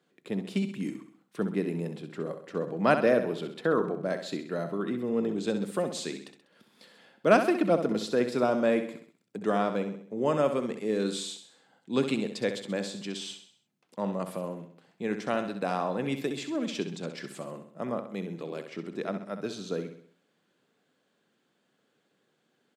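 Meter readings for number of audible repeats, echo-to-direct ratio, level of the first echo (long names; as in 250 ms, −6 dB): 4, −8.0 dB, −9.0 dB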